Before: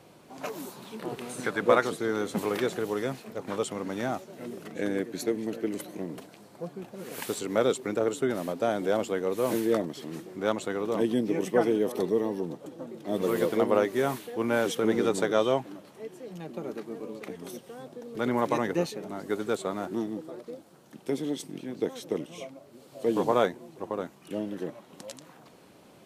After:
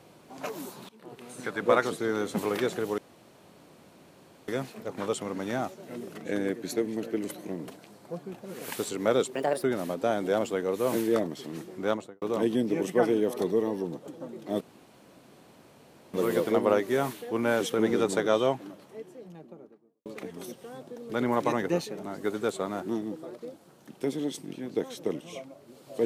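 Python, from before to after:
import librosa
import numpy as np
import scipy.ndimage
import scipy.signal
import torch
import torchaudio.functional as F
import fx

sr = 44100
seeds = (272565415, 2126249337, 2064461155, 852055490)

y = fx.studio_fade_out(x, sr, start_s=10.44, length_s=0.36)
y = fx.studio_fade_out(y, sr, start_s=15.68, length_s=1.43)
y = fx.edit(y, sr, fx.fade_in_from(start_s=0.89, length_s=0.99, floor_db=-19.5),
    fx.insert_room_tone(at_s=2.98, length_s=1.5),
    fx.speed_span(start_s=7.85, length_s=0.37, speed=1.29),
    fx.insert_room_tone(at_s=13.19, length_s=1.53), tone=tone)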